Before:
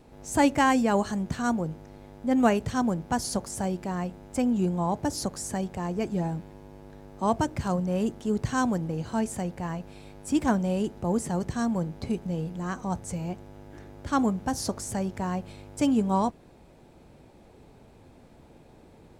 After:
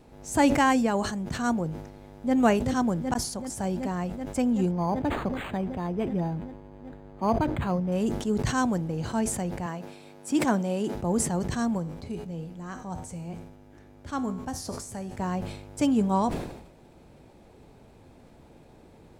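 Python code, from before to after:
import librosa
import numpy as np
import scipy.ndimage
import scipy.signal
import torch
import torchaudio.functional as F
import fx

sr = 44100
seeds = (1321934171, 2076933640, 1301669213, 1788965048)

y = fx.echo_throw(x, sr, start_s=1.87, length_s=0.48, ms=380, feedback_pct=85, wet_db=-5.5)
y = fx.resample_linear(y, sr, factor=8, at=(4.71, 7.92))
y = fx.highpass(y, sr, hz=190.0, slope=12, at=(9.66, 10.95))
y = fx.comb_fb(y, sr, f0_hz=84.0, decay_s=0.7, harmonics='all', damping=0.0, mix_pct=60, at=(11.77, 15.17), fade=0.02)
y = fx.edit(y, sr, fx.clip_gain(start_s=0.87, length_s=0.48, db=-3.0),
    fx.fade_in_span(start_s=3.14, length_s=0.55), tone=tone)
y = fx.sustainer(y, sr, db_per_s=65.0)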